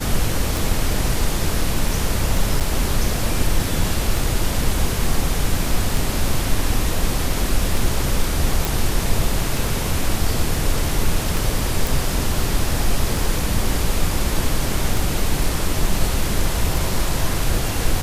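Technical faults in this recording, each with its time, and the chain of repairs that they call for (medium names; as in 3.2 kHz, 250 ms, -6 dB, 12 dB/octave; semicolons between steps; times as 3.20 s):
tick 33 1/3 rpm
2.60–2.61 s: dropout 7.2 ms
8.65 s: pop
11.87 s: pop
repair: de-click; interpolate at 2.60 s, 7.2 ms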